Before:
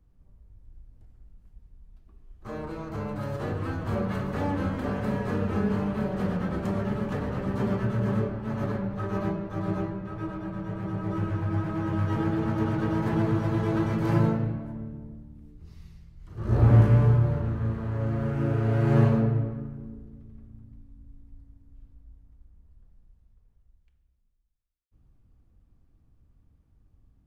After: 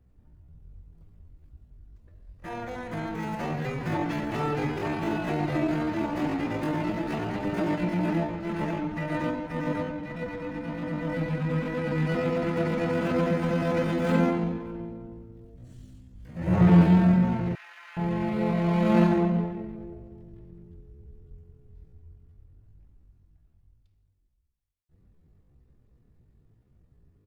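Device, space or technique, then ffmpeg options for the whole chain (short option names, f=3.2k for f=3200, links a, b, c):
chipmunk voice: -filter_complex "[0:a]asetrate=68011,aresample=44100,atempo=0.64842,asettb=1/sr,asplit=3[a][b][c];[a]atrim=end=17.554[d];[b]atrim=start=17.55:end=17.97,asetpts=PTS-STARTPTS,afade=t=in:d=0.004:c=qsin,afade=t=out:st=0.416:d=0.004:c=qsin,highpass=f=1.2k:w=0.5412,highpass=f=1.2k:w=1.3066[e];[c]atrim=start=17.966[f];[d][e]acrossfade=d=0.004:c1=hsin:c2=qsin[g];[g][f]acrossfade=d=0.004:c1=qsin:c2=hsin"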